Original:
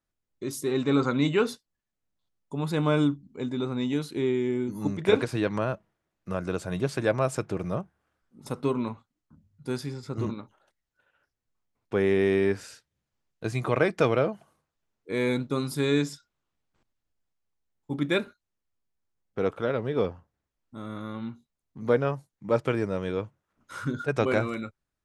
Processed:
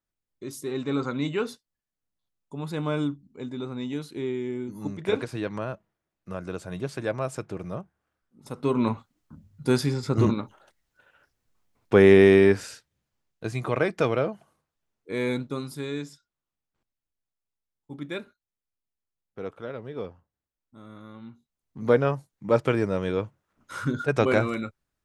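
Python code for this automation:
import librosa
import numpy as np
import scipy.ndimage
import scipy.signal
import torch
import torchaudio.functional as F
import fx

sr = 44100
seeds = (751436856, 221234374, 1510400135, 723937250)

y = fx.gain(x, sr, db=fx.line((8.51, -4.0), (8.91, 9.0), (12.13, 9.0), (13.5, -1.0), (15.35, -1.0), (15.93, -8.5), (21.24, -8.5), (21.81, 3.0)))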